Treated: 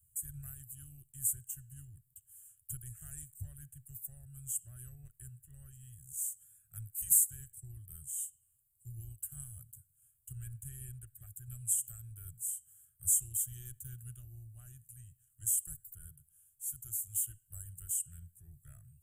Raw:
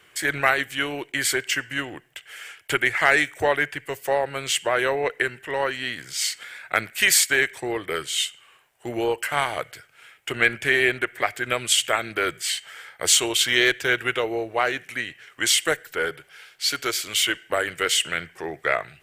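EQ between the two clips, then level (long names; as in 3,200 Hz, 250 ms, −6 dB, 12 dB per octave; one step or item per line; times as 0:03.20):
inverse Chebyshev band-stop filter 220–4,400 Hz, stop band 40 dB
phaser with its sweep stopped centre 2,200 Hz, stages 4
0.0 dB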